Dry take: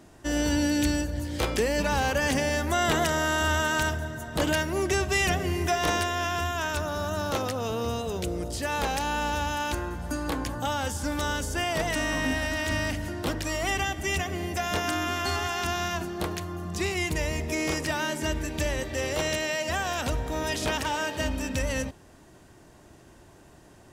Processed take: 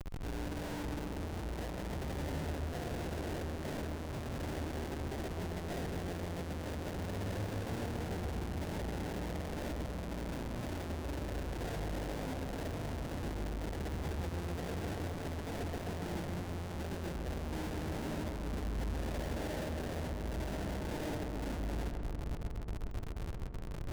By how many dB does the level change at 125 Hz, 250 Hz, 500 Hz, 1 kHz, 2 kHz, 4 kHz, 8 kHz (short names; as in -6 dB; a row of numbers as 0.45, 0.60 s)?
-6.0, -9.5, -12.0, -15.5, -18.5, -17.5, -18.5 dB